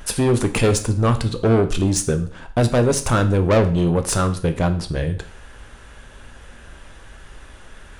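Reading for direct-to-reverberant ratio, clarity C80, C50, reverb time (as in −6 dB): 7.5 dB, 17.0 dB, 13.5 dB, 0.50 s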